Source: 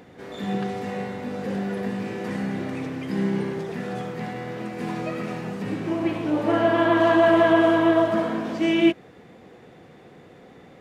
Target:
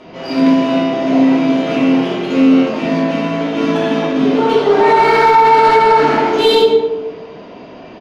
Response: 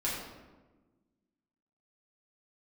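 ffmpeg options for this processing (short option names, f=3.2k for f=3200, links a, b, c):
-filter_complex "[0:a]aresample=11025,aresample=44100,acrossover=split=2400[a][b];[b]acontrast=68[c];[a][c]amix=inputs=2:normalize=0,highshelf=f=3.2k:g=-6,asplit=2[d][e];[e]volume=17dB,asoftclip=hard,volume=-17dB,volume=-10.5dB[f];[d][f]amix=inputs=2:normalize=0,adynamicsmooth=sensitivity=4.5:basefreq=3.9k[g];[1:a]atrim=start_sample=2205[h];[g][h]afir=irnorm=-1:irlink=0,asetrate=59535,aresample=44100,alimiter=level_in=5dB:limit=-1dB:release=50:level=0:latency=1,volume=-1dB"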